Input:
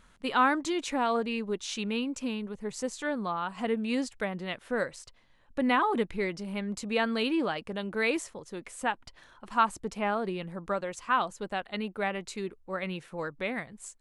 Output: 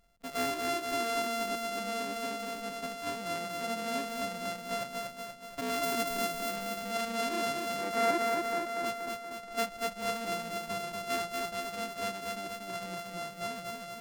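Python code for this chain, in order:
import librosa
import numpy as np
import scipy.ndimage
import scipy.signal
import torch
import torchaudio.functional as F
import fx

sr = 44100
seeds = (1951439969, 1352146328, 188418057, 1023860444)

p1 = np.r_[np.sort(x[:len(x) // 64 * 64].reshape(-1, 64), axis=1).ravel(), x[len(x) // 64 * 64:]]
p2 = fx.high_shelf(p1, sr, hz=9400.0, db=11.0, at=(5.83, 6.43))
p3 = fx.spec_box(p2, sr, start_s=7.81, length_s=1.03, low_hz=230.0, high_hz=2400.0, gain_db=8)
p4 = p3 + fx.echo_feedback(p3, sr, ms=238, feedback_pct=59, wet_db=-3.5, dry=0)
y = F.gain(torch.from_numpy(p4), -9.0).numpy()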